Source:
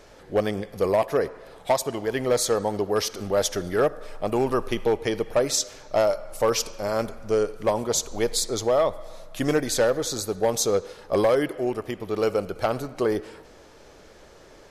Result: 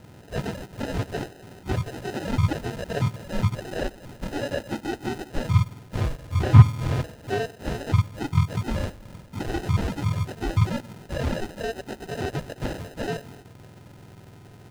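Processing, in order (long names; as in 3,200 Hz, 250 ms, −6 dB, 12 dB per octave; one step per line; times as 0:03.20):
frequency axis turned over on the octave scale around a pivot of 820 Hz
in parallel at +2 dB: downward compressor, threshold −35 dBFS, peak gain reduction 23.5 dB
0:06.18–0:07.03: on the sum: RIAA equalisation playback
decimation without filtering 39×
slew-rate limiting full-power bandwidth 290 Hz
level −4.5 dB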